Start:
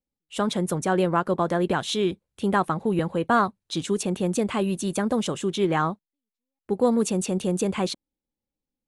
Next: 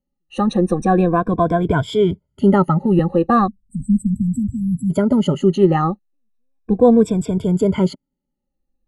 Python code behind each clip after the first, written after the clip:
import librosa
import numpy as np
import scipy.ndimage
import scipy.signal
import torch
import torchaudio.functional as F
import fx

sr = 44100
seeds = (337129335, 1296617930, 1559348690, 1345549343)

y = fx.spec_ripple(x, sr, per_octave=1.7, drift_hz=-0.36, depth_db=22)
y = fx.spec_erase(y, sr, start_s=3.48, length_s=1.43, low_hz=270.0, high_hz=7600.0)
y = fx.tilt_eq(y, sr, slope=-3.5)
y = F.gain(torch.from_numpy(y), -1.0).numpy()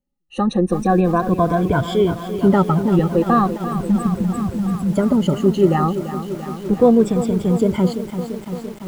y = fx.echo_crushed(x, sr, ms=341, feedback_pct=80, bits=6, wet_db=-11.0)
y = F.gain(torch.from_numpy(y), -1.0).numpy()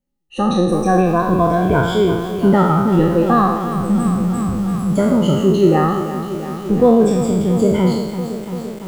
y = fx.spec_trails(x, sr, decay_s=0.95)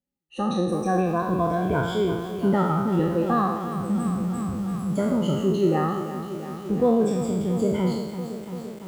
y = scipy.signal.sosfilt(scipy.signal.butter(2, 60.0, 'highpass', fs=sr, output='sos'), x)
y = F.gain(torch.from_numpy(y), -8.5).numpy()